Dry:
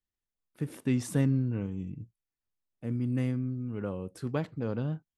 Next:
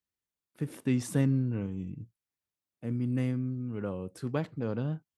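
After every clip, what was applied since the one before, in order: HPF 72 Hz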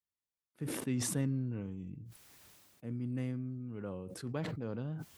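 sustainer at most 26 dB/s; gain -7.5 dB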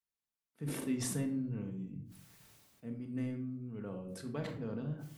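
shoebox room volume 830 m³, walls furnished, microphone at 1.6 m; gain -3.5 dB

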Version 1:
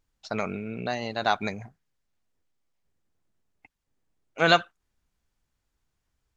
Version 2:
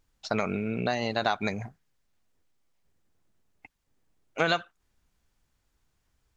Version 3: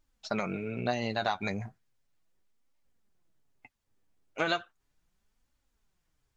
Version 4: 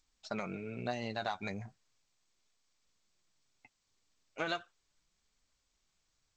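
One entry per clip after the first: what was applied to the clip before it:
compressor 5:1, threshold -27 dBFS, peak gain reduction 13 dB; gain +4.5 dB
flange 0.36 Hz, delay 3.2 ms, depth 7.8 ms, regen +35%
gain -6.5 dB; G.722 64 kbps 16000 Hz

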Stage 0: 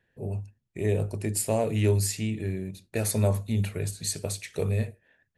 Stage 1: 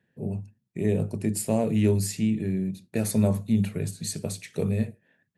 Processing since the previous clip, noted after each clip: HPF 100 Hz; bell 190 Hz +11.5 dB 1.3 oct; gain -2.5 dB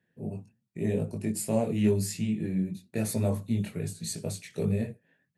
chorus voices 6, 0.85 Hz, delay 21 ms, depth 4.2 ms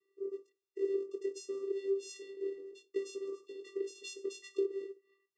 resonant high shelf 2900 Hz +7 dB, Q 1.5; compressor, threshold -32 dBFS, peak gain reduction 12.5 dB; vocoder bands 8, square 392 Hz; gain -1 dB

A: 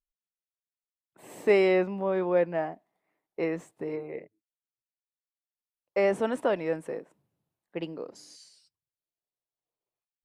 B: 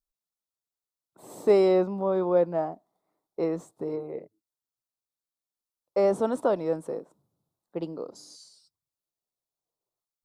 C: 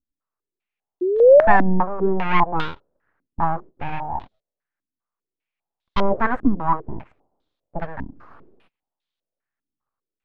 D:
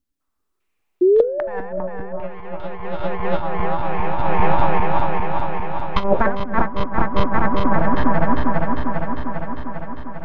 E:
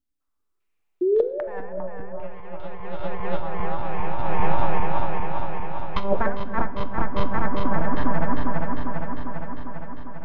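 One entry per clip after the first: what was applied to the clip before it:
band shelf 2200 Hz -13 dB 1.1 oct; gain +2 dB
full-wave rectifier; painted sound rise, 1.01–1.57, 350–770 Hz -26 dBFS; stepped low-pass 5 Hz 270–3600 Hz; gain +6 dB
regenerating reverse delay 0.2 s, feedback 83%, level -1 dB; negative-ratio compressor -16 dBFS, ratio -0.5; gain +2.5 dB
shoebox room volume 980 m³, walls mixed, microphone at 0.39 m; gain -6.5 dB

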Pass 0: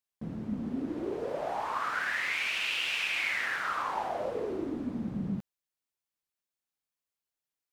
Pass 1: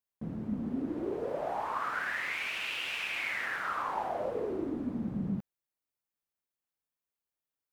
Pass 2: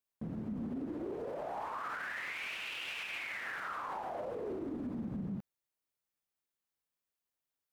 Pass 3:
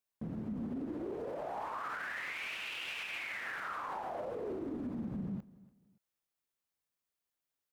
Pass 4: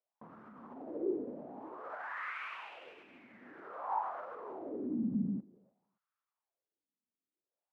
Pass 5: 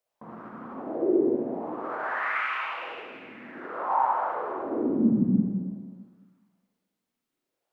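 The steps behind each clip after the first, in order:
bell 5000 Hz -6.5 dB 2.5 oct
limiter -32.5 dBFS, peak gain reduction 10.5 dB
feedback echo 0.287 s, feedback 30%, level -20.5 dB
wah 0.53 Hz 230–1300 Hz, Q 4.2; gain +10 dB
reverb RT60 1.4 s, pre-delay 48 ms, DRR -3.5 dB; gain +7.5 dB

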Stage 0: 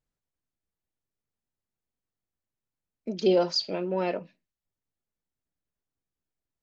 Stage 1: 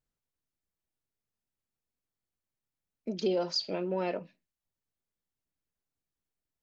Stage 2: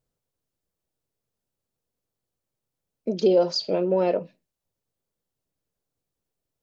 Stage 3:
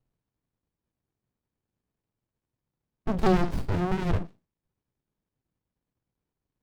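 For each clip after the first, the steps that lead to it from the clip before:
compressor 3:1, threshold -25 dBFS, peak gain reduction 6 dB; gain -2 dB
graphic EQ 125/500/2000 Hz +5/+8/-4 dB; gain +4.5 dB
running maximum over 65 samples; gain +4 dB

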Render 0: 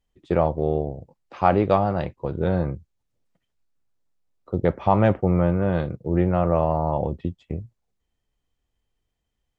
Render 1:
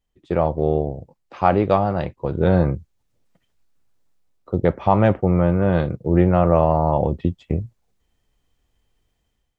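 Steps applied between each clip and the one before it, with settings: AGC gain up to 10 dB; gain -1 dB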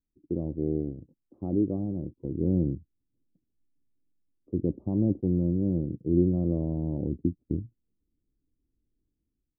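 ladder low-pass 340 Hz, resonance 60%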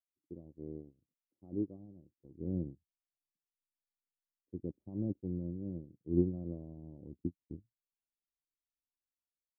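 upward expander 2.5:1, over -38 dBFS; gain -4.5 dB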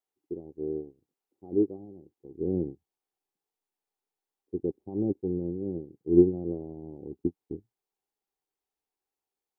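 small resonant body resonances 410/780 Hz, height 16 dB, ringing for 25 ms; gain +1.5 dB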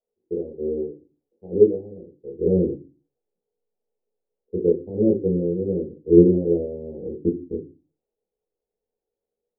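synth low-pass 520 Hz, resonance Q 4.9; reverb RT60 0.25 s, pre-delay 5 ms, DRR 0 dB; gain -2 dB

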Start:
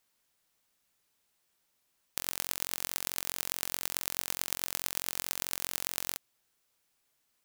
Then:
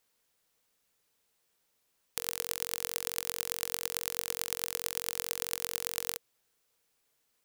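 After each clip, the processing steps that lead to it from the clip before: bell 470 Hz +9 dB 0.22 oct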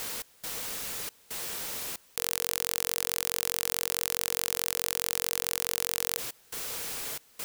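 step gate "x.xxx.xx" 69 bpm -24 dB; fast leveller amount 100%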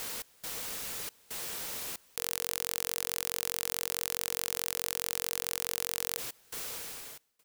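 ending faded out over 0.83 s; short-mantissa float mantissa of 2-bit; gain -2.5 dB

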